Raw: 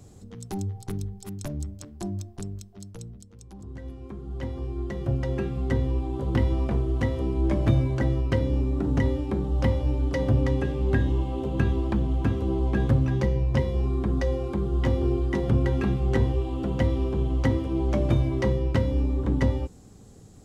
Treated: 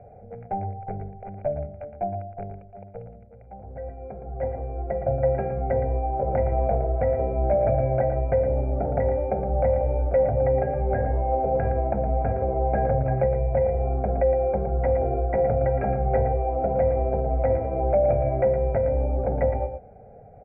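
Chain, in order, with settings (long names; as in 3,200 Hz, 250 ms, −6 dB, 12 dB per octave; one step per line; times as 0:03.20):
stylus tracing distortion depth 0.22 ms
flat-topped bell 560 Hz +13.5 dB 1.2 octaves
comb filter 1.4 ms, depth 70%
brickwall limiter −11.5 dBFS, peak gain reduction 8.5 dB
Chebyshev low-pass with heavy ripple 2,500 Hz, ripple 6 dB
on a send: single-tap delay 115 ms −8.5 dB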